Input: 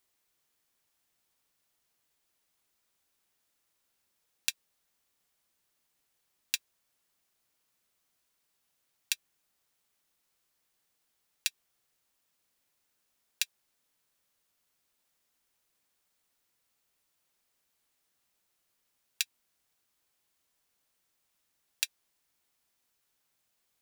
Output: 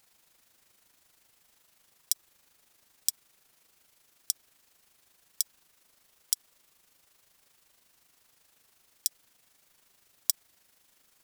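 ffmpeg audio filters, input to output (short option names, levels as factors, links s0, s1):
-af "tremolo=f=12:d=0.53,asetrate=93492,aresample=44100,alimiter=level_in=8.91:limit=0.891:release=50:level=0:latency=1,volume=0.891"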